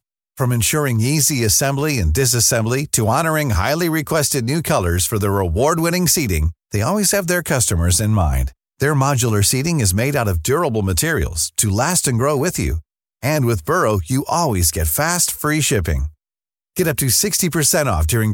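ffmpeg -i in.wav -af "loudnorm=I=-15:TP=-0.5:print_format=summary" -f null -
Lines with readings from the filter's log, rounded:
Input Integrated:    -16.9 LUFS
Input True Peak:      -1.2 dBTP
Input LRA:             1.6 LU
Input Threshold:     -27.1 LUFS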